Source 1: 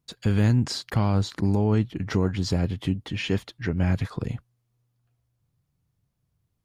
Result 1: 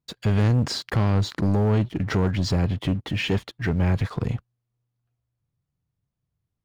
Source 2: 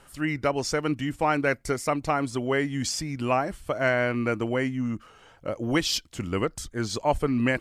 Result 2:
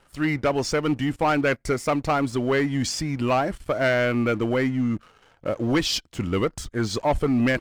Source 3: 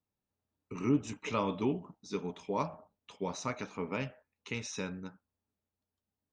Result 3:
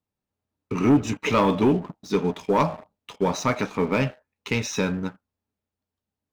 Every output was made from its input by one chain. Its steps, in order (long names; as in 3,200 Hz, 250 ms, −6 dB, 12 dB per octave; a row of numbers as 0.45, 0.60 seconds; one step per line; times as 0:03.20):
high-shelf EQ 5,700 Hz −8.5 dB
leveller curve on the samples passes 2
loudness normalisation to −24 LKFS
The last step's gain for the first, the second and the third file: −2.0, −2.5, +7.0 decibels